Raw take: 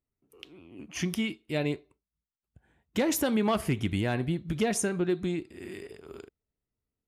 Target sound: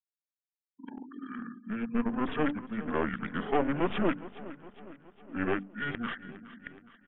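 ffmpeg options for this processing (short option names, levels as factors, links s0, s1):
-af "areverse,highpass=f=340:w=0.5412,highpass=f=340:w=1.3066,bandreject=f=50:t=h:w=6,bandreject=f=100:t=h:w=6,bandreject=f=150:t=h:w=6,bandreject=f=200:t=h:w=6,bandreject=f=250:t=h:w=6,bandreject=f=300:t=h:w=6,bandreject=f=350:t=h:w=6,bandreject=f=400:t=h:w=6,bandreject=f=450:t=h:w=6,afftfilt=real='re*gte(hypot(re,im),0.00398)':imag='im*gte(hypot(re,im),0.00398)':win_size=1024:overlap=0.75,equalizer=f=3300:w=7:g=-7.5,aeval=exprs='clip(val(0),-1,0.0119)':c=same,aecho=1:1:413|826|1239|1652|2065:0.15|0.0823|0.0453|0.0249|0.0137,aresample=11025,aresample=44100,asetrate=28595,aresample=44100,atempo=1.54221,volume=1.78"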